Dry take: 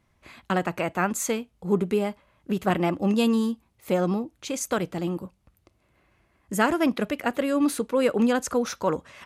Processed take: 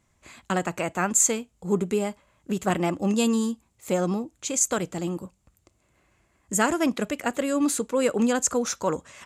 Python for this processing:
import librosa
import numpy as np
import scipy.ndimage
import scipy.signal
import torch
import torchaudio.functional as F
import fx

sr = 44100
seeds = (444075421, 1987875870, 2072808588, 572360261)

y = fx.peak_eq(x, sr, hz=7300.0, db=15.0, octaves=0.48)
y = y * librosa.db_to_amplitude(-1.0)